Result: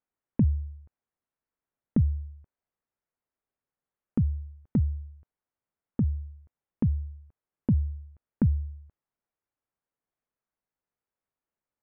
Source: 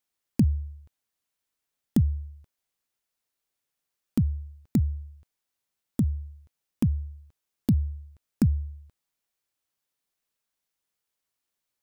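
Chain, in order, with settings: Gaussian blur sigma 4.6 samples; dynamic EQ 340 Hz, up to -4 dB, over -33 dBFS, Q 0.94

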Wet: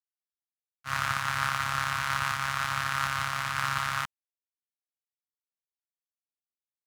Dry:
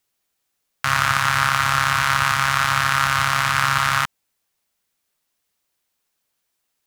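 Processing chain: expander -13 dBFS; gain -6.5 dB

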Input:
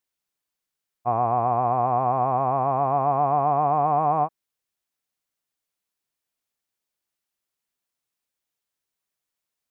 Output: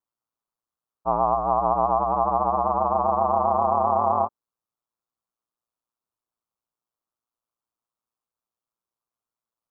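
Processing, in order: resonant high shelf 1500 Hz -8 dB, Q 3; ring modulator 58 Hz

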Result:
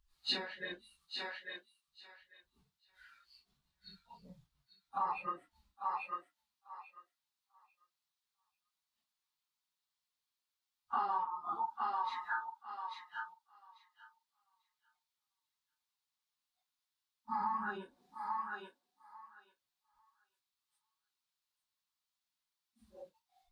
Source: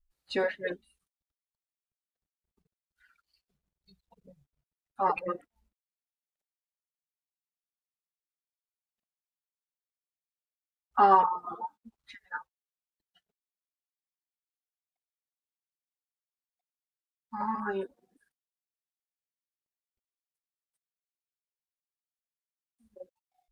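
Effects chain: phase scrambler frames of 0.1 s; thinning echo 0.843 s, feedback 16%, high-pass 740 Hz, level -11 dB; compressor 8:1, threshold -40 dBFS, peak gain reduction 24 dB; graphic EQ 500/1000/4000 Hz -10/+9/+10 dB; gain +1.5 dB

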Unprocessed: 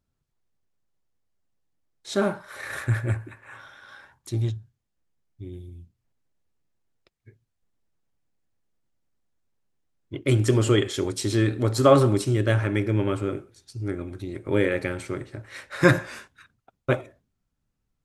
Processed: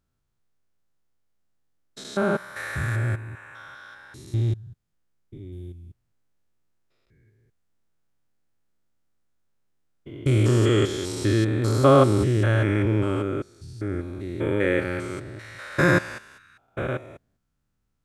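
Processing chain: stepped spectrum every 0.2 s; bell 1400 Hz +3.5 dB 0.47 oct; gain +3 dB

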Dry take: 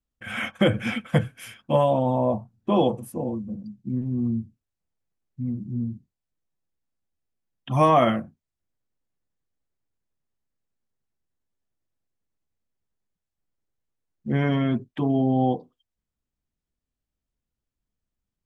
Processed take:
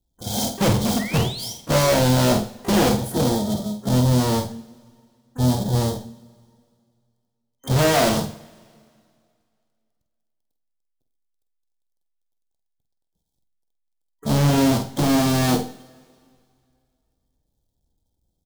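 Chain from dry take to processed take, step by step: half-waves squared off; FFT band-reject 960–3100 Hz; overloaded stage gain 23.5 dB; painted sound rise, 0.99–1.53, 1800–6100 Hz -41 dBFS; two-slope reverb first 0.53 s, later 2.3 s, from -19 dB, DRR 8.5 dB; harmoniser -7 st -18 dB, +12 st -16 dB; doubler 48 ms -8 dB; gain +6 dB

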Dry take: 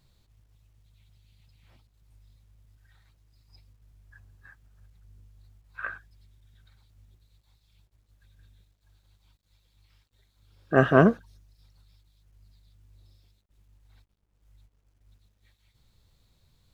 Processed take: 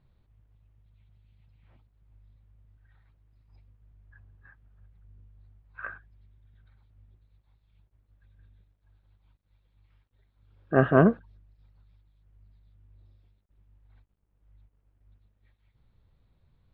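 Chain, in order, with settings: air absorption 490 m

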